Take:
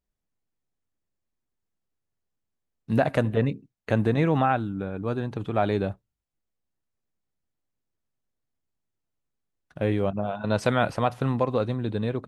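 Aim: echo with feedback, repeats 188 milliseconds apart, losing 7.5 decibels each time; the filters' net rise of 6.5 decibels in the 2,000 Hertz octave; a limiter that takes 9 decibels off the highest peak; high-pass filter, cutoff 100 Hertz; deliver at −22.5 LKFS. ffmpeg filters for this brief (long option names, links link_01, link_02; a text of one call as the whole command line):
ffmpeg -i in.wav -af "highpass=100,equalizer=frequency=2000:width_type=o:gain=9,alimiter=limit=-13.5dB:level=0:latency=1,aecho=1:1:188|376|564|752|940:0.422|0.177|0.0744|0.0312|0.0131,volume=4.5dB" out.wav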